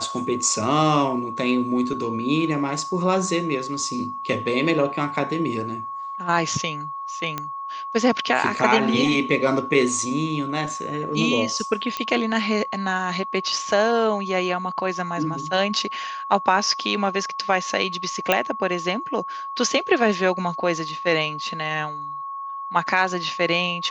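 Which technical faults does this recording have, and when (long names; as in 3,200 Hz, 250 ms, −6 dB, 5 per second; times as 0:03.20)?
whistle 1,100 Hz −29 dBFS
0:07.38: click −12 dBFS
0:11.97: click −11 dBFS
0:18.32: click −4 dBFS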